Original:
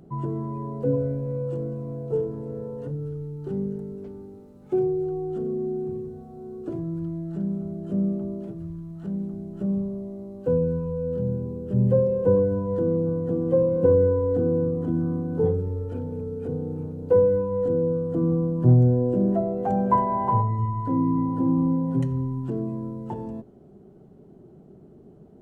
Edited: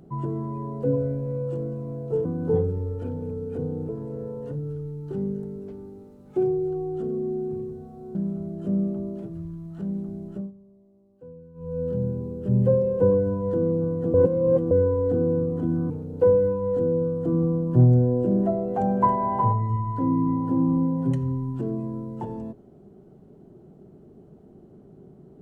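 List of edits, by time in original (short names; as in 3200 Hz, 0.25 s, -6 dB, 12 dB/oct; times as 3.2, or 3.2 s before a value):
6.51–7.4 cut
9.52–11.04 dip -22 dB, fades 0.25 s
13.39–13.96 reverse
15.15–16.79 move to 2.25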